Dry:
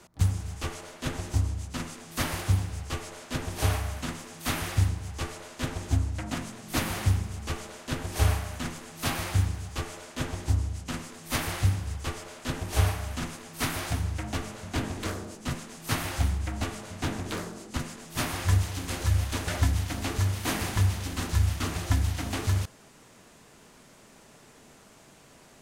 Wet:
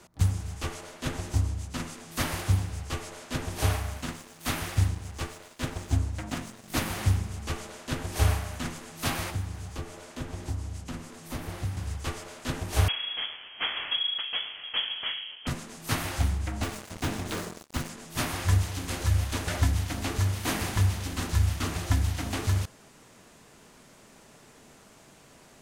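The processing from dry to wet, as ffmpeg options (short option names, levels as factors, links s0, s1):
-filter_complex "[0:a]asettb=1/sr,asplit=3[s0][s1][s2];[s0]atrim=end=3.724[s3];[s1]atrim=start=3.72:end=6.99,asetpts=PTS-STARTPTS,afade=t=in:d=0.004:c=qsin,afade=t=out:st=3.266:d=0.004:c=qsin,aeval=exprs='sgn(val(0))*max(abs(val(0))-0.00422,0)':c=same[s4];[s2]atrim=start=6.986[s5];[s3][s4]acrossfade=d=0.004:c1=hsin:c2=qsin[s6];[s6][s5]acrossfade=d=0.004:c1=qsin:c2=hsin,asettb=1/sr,asplit=3[s7][s8][s9];[s7]atrim=end=9.304[s10];[s8]atrim=start=9.3:end=11.77,asetpts=PTS-STARTPTS,afade=t=in:d=0.004:c=qsin,afade=t=out:st=2.466:d=0.004:c=qsin,acrossover=split=110|610|1300[s11][s12][s13][s14];[s11]acompressor=threshold=0.0158:ratio=3[s15];[s12]acompressor=threshold=0.0141:ratio=3[s16];[s13]acompressor=threshold=0.00282:ratio=3[s17];[s14]acompressor=threshold=0.00398:ratio=3[s18];[s15][s16][s17][s18]amix=inputs=4:normalize=0[s19];[s9]atrim=start=11.766[s20];[s10][s19]acrossfade=d=0.004:c1=hsin:c2=qsin[s21];[s21][s20]acrossfade=d=0.004:c1=qsin:c2=hsin,asettb=1/sr,asplit=3[s22][s23][s24];[s22]atrim=end=12.884[s25];[s23]atrim=start=12.88:end=15.47,asetpts=PTS-STARTPTS,afade=t=in:d=0.004:c=qsin,afade=t=out:st=2.586:d=0.004:c=qsin,lowpass=f=2900:t=q:w=0.5098,lowpass=f=2900:t=q:w=0.6013,lowpass=f=2900:t=q:w=0.9,lowpass=f=2900:t=q:w=2.563,afreqshift=-3400[s26];[s24]atrim=start=15.466[s27];[s25][s26]acrossfade=d=0.004:c1=hsin:c2=qsin[s28];[s28][s27]acrossfade=d=0.004:c1=qsin:c2=hsin,asettb=1/sr,asplit=3[s29][s30][s31];[s29]atrim=end=16.634[s32];[s30]atrim=start=16.63:end=17.89,asetpts=PTS-STARTPTS,afade=t=in:d=0.004:c=qsin,afade=t=out:st=1.256:d=0.004:c=qsin,acrusher=bits=5:mix=0:aa=0.5[s33];[s31]atrim=start=17.886[s34];[s32][s33]acrossfade=d=0.004:c1=hsin:c2=qsin[s35];[s35][s34]acrossfade=d=0.004:c1=qsin:c2=hsin"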